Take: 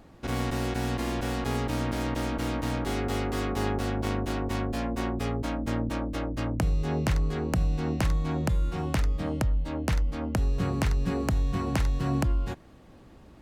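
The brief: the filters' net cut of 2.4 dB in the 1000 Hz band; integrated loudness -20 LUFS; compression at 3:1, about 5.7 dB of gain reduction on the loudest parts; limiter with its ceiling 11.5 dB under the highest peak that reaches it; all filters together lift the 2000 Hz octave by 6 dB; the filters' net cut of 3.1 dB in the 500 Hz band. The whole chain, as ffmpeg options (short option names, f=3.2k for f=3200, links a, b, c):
-af "equalizer=f=500:t=o:g=-3.5,equalizer=f=1k:t=o:g=-4.5,equalizer=f=2k:t=o:g=9,acompressor=threshold=-29dB:ratio=3,volume=15.5dB,alimiter=limit=-10.5dB:level=0:latency=1"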